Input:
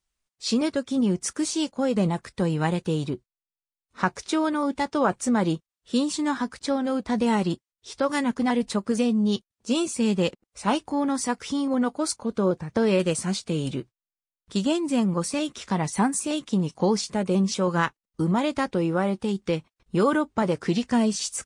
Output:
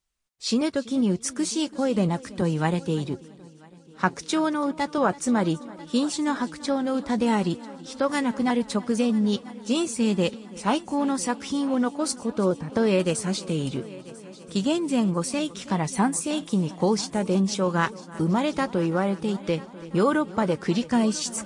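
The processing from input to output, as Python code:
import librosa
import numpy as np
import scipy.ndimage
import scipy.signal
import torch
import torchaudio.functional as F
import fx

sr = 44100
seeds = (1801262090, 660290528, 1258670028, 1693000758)

y = fx.echo_heads(x, sr, ms=331, heads='first and third', feedback_pct=56, wet_db=-20.0)
y = fx.band_widen(y, sr, depth_pct=40, at=(2.41, 4.98))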